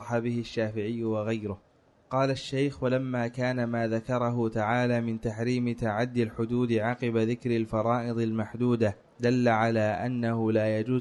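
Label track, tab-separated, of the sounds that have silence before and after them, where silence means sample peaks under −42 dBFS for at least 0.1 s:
2.110000	8.930000	sound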